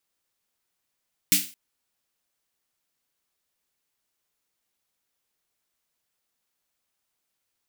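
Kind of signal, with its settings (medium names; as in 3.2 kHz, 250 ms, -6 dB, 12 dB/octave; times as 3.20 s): snare drum length 0.22 s, tones 190 Hz, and 290 Hz, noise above 2.1 kHz, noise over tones 11 dB, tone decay 0.27 s, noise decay 0.35 s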